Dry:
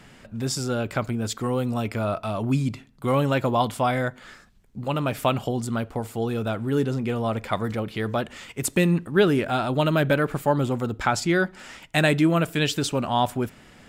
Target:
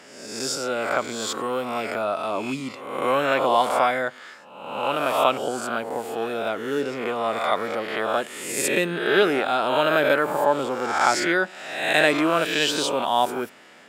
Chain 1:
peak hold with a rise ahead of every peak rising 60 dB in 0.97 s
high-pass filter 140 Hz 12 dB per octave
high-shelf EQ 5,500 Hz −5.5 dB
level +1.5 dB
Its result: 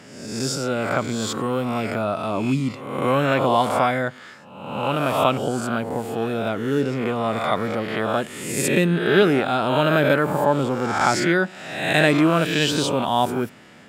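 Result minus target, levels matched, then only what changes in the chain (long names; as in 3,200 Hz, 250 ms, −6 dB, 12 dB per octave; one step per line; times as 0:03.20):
125 Hz band +12.5 dB
change: high-pass filter 390 Hz 12 dB per octave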